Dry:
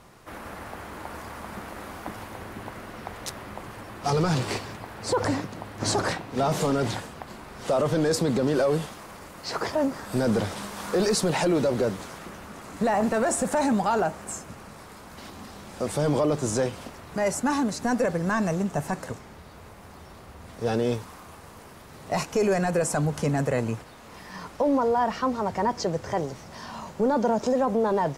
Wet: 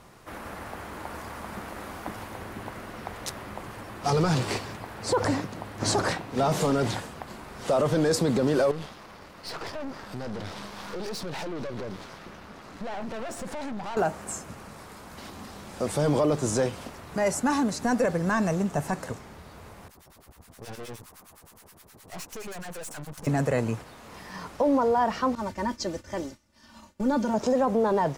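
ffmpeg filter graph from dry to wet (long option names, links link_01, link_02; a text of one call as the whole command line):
ffmpeg -i in.wav -filter_complex "[0:a]asettb=1/sr,asplit=3[link_01][link_02][link_03];[link_01]atrim=end=8.714[link_04];[link_02]atrim=start=8.71:end=13.97,asetpts=PTS-STARTPTS,afade=type=in:duration=0.004:curve=qsin,afade=type=out:start_time=5.256:duration=0.004:curve=qsin,acompressor=threshold=-24dB:ratio=6:attack=3.2:release=140:knee=1:detection=peak,highshelf=frequency=6200:width_type=q:width=1.5:gain=-7,aeval=exprs='(tanh(39.8*val(0)+0.7)-tanh(0.7))/39.8':channel_layout=same[link_05];[link_03]atrim=start=13.966[link_06];[link_04][link_05]acrossfade=duration=0.004:curve1=hsin:curve2=qsin[link_07];[link_07][link_06]acrossfade=duration=0.004:curve1=qsin:curve2=hsin,asettb=1/sr,asplit=3[link_08][link_09][link_10];[link_08]atrim=end=19.884[link_11];[link_09]atrim=start=19.88:end=23.27,asetpts=PTS-STARTPTS,afade=type=in:duration=0.004:curve=qsin,afade=type=out:start_time=3.386:duration=0.004:curve=qsin,aemphasis=mode=production:type=50kf,acrossover=split=990[link_12][link_13];[link_12]aeval=exprs='val(0)*(1-1/2+1/2*cos(2*PI*9.6*n/s))':channel_layout=same[link_14];[link_13]aeval=exprs='val(0)*(1-1/2-1/2*cos(2*PI*9.6*n/s))':channel_layout=same[link_15];[link_14][link_15]amix=inputs=2:normalize=0,aeval=exprs='(tanh(70.8*val(0)+0.8)-tanh(0.8))/70.8':channel_layout=same[link_16];[link_10]atrim=start=23.266[link_17];[link_11][link_16]acrossfade=duration=0.004:curve1=hsin:curve2=qsin[link_18];[link_18][link_17]acrossfade=duration=0.004:curve1=qsin:curve2=hsin,asettb=1/sr,asplit=3[link_19][link_20][link_21];[link_19]atrim=end=25.354[link_22];[link_20]atrim=start=25.35:end=27.34,asetpts=PTS-STARTPTS,afade=type=in:duration=0.004:curve=qsin,afade=type=out:start_time=1.986:duration=0.004:curve=qsin,agate=range=-33dB:threshold=-31dB:ratio=3:release=100:detection=peak,equalizer=frequency=730:width=0.65:gain=-9.5,aecho=1:1:3.4:0.83,atrim=end_sample=87759[link_23];[link_21]atrim=start=27.336[link_24];[link_22][link_23]acrossfade=duration=0.004:curve1=hsin:curve2=qsin[link_25];[link_25][link_24]acrossfade=duration=0.004:curve1=qsin:curve2=hsin" out.wav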